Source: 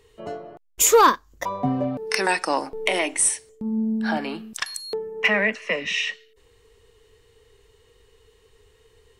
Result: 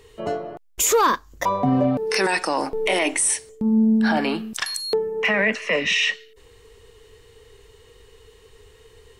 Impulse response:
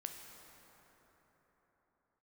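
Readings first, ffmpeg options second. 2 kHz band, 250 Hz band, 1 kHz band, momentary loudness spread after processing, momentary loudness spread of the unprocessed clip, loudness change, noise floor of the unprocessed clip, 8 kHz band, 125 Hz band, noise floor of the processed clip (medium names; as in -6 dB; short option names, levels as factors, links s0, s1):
+1.5 dB, +5.5 dB, -0.5 dB, 9 LU, 15 LU, +1.5 dB, -59 dBFS, -1.0 dB, +5.0 dB, -52 dBFS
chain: -af "alimiter=limit=0.119:level=0:latency=1:release=15,volume=2.24"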